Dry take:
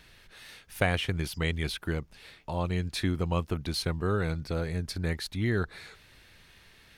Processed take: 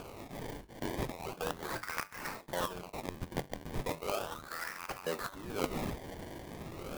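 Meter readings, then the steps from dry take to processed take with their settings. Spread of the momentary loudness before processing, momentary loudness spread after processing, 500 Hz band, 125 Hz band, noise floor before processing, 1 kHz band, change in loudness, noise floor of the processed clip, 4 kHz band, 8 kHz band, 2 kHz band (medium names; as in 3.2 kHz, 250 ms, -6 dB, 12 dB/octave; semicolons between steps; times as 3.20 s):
18 LU, 8 LU, -5.0 dB, -14.0 dB, -58 dBFS, -1.0 dB, -8.5 dB, -52 dBFS, -9.0 dB, -2.5 dB, -6.5 dB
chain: rattle on loud lows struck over -40 dBFS, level -32 dBFS; reverse; compression 6:1, threshold -39 dBFS, peak gain reduction 18 dB; reverse; high-pass sweep 140 Hz -> 1.4 kHz, 4.95–6.19 s; peaking EQ 1.2 kHz +9.5 dB 0.28 oct; hum notches 50/100/150/200 Hz; in parallel at -3 dB: upward compressor, threshold -41 dBFS; on the sum: feedback comb 96 Hz, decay 0.25 s, harmonics all, mix 70%; integer overflow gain 29.5 dB; bass shelf 330 Hz +8.5 dB; LFO high-pass saw up 0.79 Hz 460–3000 Hz; decimation with a swept rate 23×, swing 100% 0.36 Hz; sampling jitter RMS 0.027 ms; trim +5.5 dB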